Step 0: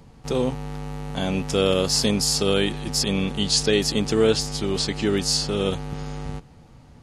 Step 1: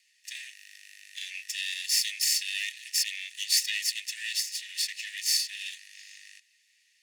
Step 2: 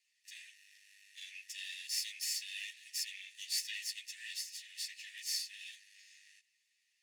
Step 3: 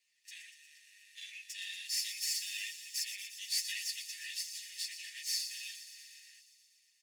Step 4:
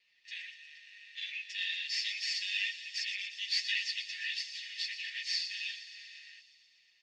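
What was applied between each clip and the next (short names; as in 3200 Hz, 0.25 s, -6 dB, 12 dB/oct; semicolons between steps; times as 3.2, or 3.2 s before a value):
minimum comb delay 1.1 ms; rippled Chebyshev high-pass 1800 Hz, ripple 3 dB
ensemble effect; gain -8.5 dB
comb 5.5 ms; thin delay 0.119 s, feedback 75%, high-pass 4600 Hz, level -8.5 dB
LPF 4200 Hz 24 dB/oct; gain +8.5 dB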